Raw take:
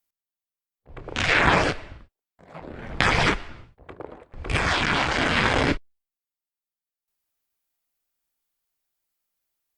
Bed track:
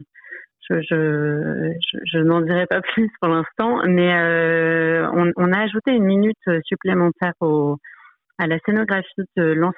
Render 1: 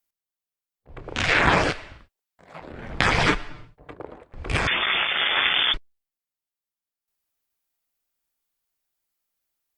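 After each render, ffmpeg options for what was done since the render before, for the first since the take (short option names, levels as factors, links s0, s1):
-filter_complex "[0:a]asettb=1/sr,asplit=3[s0][s1][s2];[s0]atrim=end=1.704[s3];[s1]atrim=start=1.7:end=2.72,asetpts=PTS-STARTPTS,afade=t=in:d=0.004:c=qsin,afade=t=out:st=1.016:d=0.004:c=qsin,tiltshelf=f=780:g=-4[s4];[s2]atrim=start=2.716[s5];[s3][s4]acrossfade=d=0.004:c1=hsin:c2=qsin[s6];[s6][s5]acrossfade=d=0.004:c1=qsin:c2=hsin,asettb=1/sr,asplit=3[s7][s8][s9];[s7]atrim=end=3.284[s10];[s8]atrim=start=3.28:end=3.94,asetpts=PTS-STARTPTS,afade=t=in:d=0.004:c=qsin,afade=t=out:st=0.656:d=0.004:c=qsin,aecho=1:1:6.7:0.65,atrim=end_sample=29106[s11];[s9]atrim=start=3.936[s12];[s10][s11]acrossfade=d=0.004:c1=hsin:c2=qsin[s13];[s13][s12]acrossfade=d=0.004:c1=qsin:c2=hsin,asettb=1/sr,asplit=3[s14][s15][s16];[s14]atrim=end=4.674[s17];[s15]atrim=start=4.67:end=5.74,asetpts=PTS-STARTPTS,afade=t=in:d=0.004:c=qsin,afade=t=out:st=1.066:d=0.004:c=qsin,lowpass=f=3100:t=q:w=0.5098,lowpass=f=3100:t=q:w=0.6013,lowpass=f=3100:t=q:w=0.9,lowpass=f=3100:t=q:w=2.563,afreqshift=-3600[s18];[s16]atrim=start=5.736[s19];[s17][s18]acrossfade=d=0.004:c1=hsin:c2=qsin[s20];[s20][s19]acrossfade=d=0.004:c1=qsin:c2=hsin"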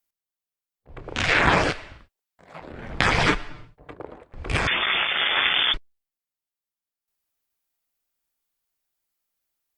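-af anull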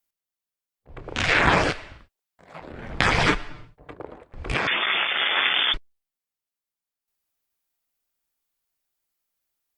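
-filter_complex "[0:a]asettb=1/sr,asplit=3[s0][s1][s2];[s0]atrim=end=4.544[s3];[s1]atrim=start=4.54:end=5.72,asetpts=PTS-STARTPTS,afade=t=in:d=0.004:c=qsin,afade=t=out:st=1.176:d=0.004:c=qsin,highpass=190,lowpass=4800[s4];[s2]atrim=start=5.716[s5];[s3][s4]acrossfade=d=0.004:c1=hsin:c2=qsin[s6];[s6][s5]acrossfade=d=0.004:c1=qsin:c2=hsin"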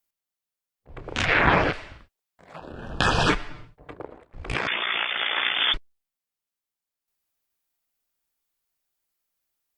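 -filter_complex "[0:a]asplit=3[s0][s1][s2];[s0]afade=t=out:st=1.24:d=0.02[s3];[s1]lowpass=3000,afade=t=in:st=1.24:d=0.02,afade=t=out:st=1.72:d=0.02[s4];[s2]afade=t=in:st=1.72:d=0.02[s5];[s3][s4][s5]amix=inputs=3:normalize=0,asettb=1/sr,asplit=3[s6][s7][s8];[s6]atrim=end=2.564[s9];[s7]atrim=start=2.56:end=3.3,asetpts=PTS-STARTPTS,afade=t=in:d=0.004:c=qsin,afade=t=out:st=0.736:d=0.004:c=qsin,asuperstop=centerf=2100:order=12:qfactor=3[s10];[s8]atrim=start=3.296[s11];[s9][s10]acrossfade=d=0.004:c1=hsin:c2=qsin[s12];[s12][s11]acrossfade=d=0.004:c1=qsin:c2=hsin,asettb=1/sr,asplit=3[s13][s14][s15];[s13]atrim=end=4.064[s16];[s14]atrim=start=4.06:end=5.61,asetpts=PTS-STARTPTS,afade=t=in:d=0.004:c=qsin,afade=t=out:st=1.546:d=0.004:c=qsin,tremolo=f=59:d=0.667[s17];[s15]atrim=start=5.606[s18];[s16][s17]acrossfade=d=0.004:c1=hsin:c2=qsin[s19];[s19][s18]acrossfade=d=0.004:c1=qsin:c2=hsin"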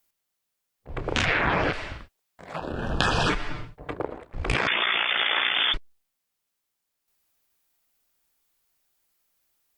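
-filter_complex "[0:a]asplit=2[s0][s1];[s1]alimiter=limit=0.168:level=0:latency=1:release=28,volume=1.41[s2];[s0][s2]amix=inputs=2:normalize=0,acompressor=threshold=0.1:ratio=6"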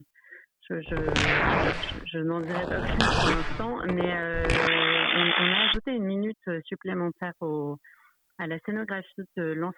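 -filter_complex "[1:a]volume=0.237[s0];[0:a][s0]amix=inputs=2:normalize=0"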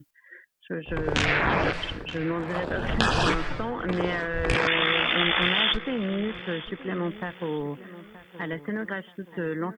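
-filter_complex "[0:a]asplit=2[s0][s1];[s1]adelay=926,lowpass=f=4300:p=1,volume=0.168,asplit=2[s2][s3];[s3]adelay=926,lowpass=f=4300:p=1,volume=0.45,asplit=2[s4][s5];[s5]adelay=926,lowpass=f=4300:p=1,volume=0.45,asplit=2[s6][s7];[s7]adelay=926,lowpass=f=4300:p=1,volume=0.45[s8];[s0][s2][s4][s6][s8]amix=inputs=5:normalize=0"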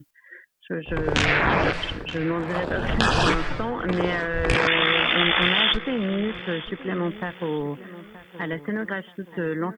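-af "volume=1.41,alimiter=limit=0.708:level=0:latency=1"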